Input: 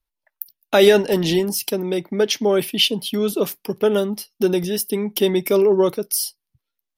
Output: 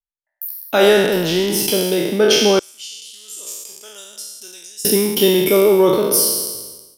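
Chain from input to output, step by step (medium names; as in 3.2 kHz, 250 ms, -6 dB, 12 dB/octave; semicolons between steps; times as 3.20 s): spectral sustain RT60 1.35 s; gate with hold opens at -35 dBFS; 2.59–4.85 s: band-pass filter 7.3 kHz, Q 7.7; level rider gain up to 15 dB; trim -1 dB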